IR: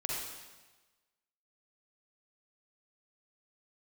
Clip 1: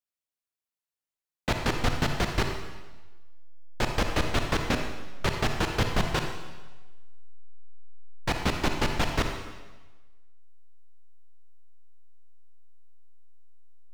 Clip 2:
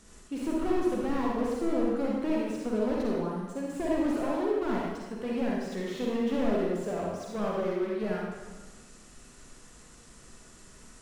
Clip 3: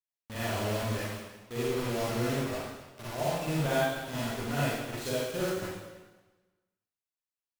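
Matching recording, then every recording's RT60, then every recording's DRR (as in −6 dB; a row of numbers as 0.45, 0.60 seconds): 2; 1.2, 1.2, 1.2 seconds; 4.0, −4.0, −10.0 decibels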